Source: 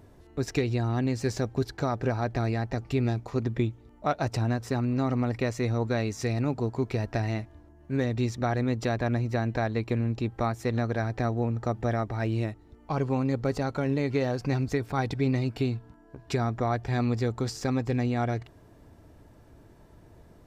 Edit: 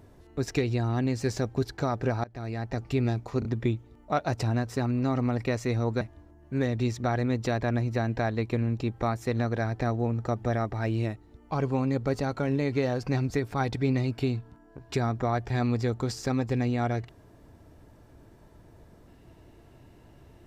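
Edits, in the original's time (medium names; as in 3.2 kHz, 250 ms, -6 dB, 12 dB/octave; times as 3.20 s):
2.24–2.81 s: fade in, from -22.5 dB
3.39 s: stutter 0.03 s, 3 plays
5.95–7.39 s: delete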